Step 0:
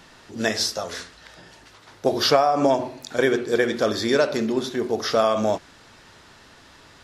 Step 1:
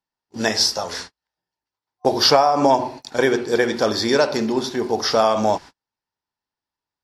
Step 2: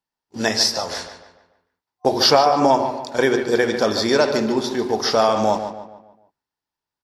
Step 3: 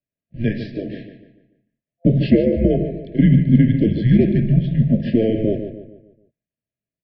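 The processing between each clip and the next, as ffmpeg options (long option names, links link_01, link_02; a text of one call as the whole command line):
ffmpeg -i in.wav -af "agate=range=-44dB:threshold=-38dB:ratio=16:detection=peak,superequalizer=9b=2.24:14b=1.78,volume=2dB" out.wav
ffmpeg -i in.wav -filter_complex "[0:a]asplit=2[link_01][link_02];[link_02]adelay=146,lowpass=frequency=3400:poles=1,volume=-9dB,asplit=2[link_03][link_04];[link_04]adelay=146,lowpass=frequency=3400:poles=1,volume=0.43,asplit=2[link_05][link_06];[link_06]adelay=146,lowpass=frequency=3400:poles=1,volume=0.43,asplit=2[link_07][link_08];[link_08]adelay=146,lowpass=frequency=3400:poles=1,volume=0.43,asplit=2[link_09][link_10];[link_10]adelay=146,lowpass=frequency=3400:poles=1,volume=0.43[link_11];[link_01][link_03][link_05][link_07][link_09][link_11]amix=inputs=6:normalize=0" out.wav
ffmpeg -i in.wav -af "highpass=frequency=220:width_type=q:width=0.5412,highpass=frequency=220:width_type=q:width=1.307,lowpass=frequency=3000:width_type=q:width=0.5176,lowpass=frequency=3000:width_type=q:width=0.7071,lowpass=frequency=3000:width_type=q:width=1.932,afreqshift=-220,equalizer=frequency=125:width_type=o:width=1:gain=12,equalizer=frequency=250:width_type=o:width=1:gain=7,equalizer=frequency=1000:width_type=o:width=1:gain=-10,afftfilt=real='re*(1-between(b*sr/4096,680,1600))':imag='im*(1-between(b*sr/4096,680,1600))':win_size=4096:overlap=0.75,volume=-3dB" out.wav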